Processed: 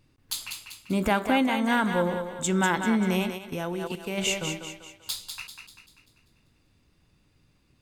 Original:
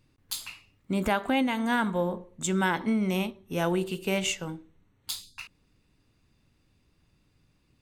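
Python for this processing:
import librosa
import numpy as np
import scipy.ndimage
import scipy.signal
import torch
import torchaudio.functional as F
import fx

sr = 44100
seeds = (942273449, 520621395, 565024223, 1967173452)

y = fx.vibrato(x, sr, rate_hz=2.2, depth_cents=14.0)
y = fx.echo_thinned(y, sr, ms=195, feedback_pct=46, hz=350.0, wet_db=-6.5)
y = fx.level_steps(y, sr, step_db=11, at=(3.37, 4.17), fade=0.02)
y = y * librosa.db_to_amplitude(2.0)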